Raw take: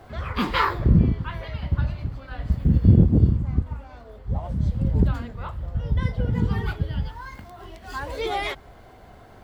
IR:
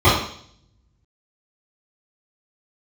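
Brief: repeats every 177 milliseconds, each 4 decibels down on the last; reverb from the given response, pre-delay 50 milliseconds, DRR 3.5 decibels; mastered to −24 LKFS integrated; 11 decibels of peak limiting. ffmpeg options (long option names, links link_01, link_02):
-filter_complex "[0:a]alimiter=limit=-14dB:level=0:latency=1,aecho=1:1:177|354|531|708|885|1062|1239|1416|1593:0.631|0.398|0.25|0.158|0.0994|0.0626|0.0394|0.0249|0.0157,asplit=2[link_01][link_02];[1:a]atrim=start_sample=2205,adelay=50[link_03];[link_02][link_03]afir=irnorm=-1:irlink=0,volume=-29.5dB[link_04];[link_01][link_04]amix=inputs=2:normalize=0,volume=-6dB"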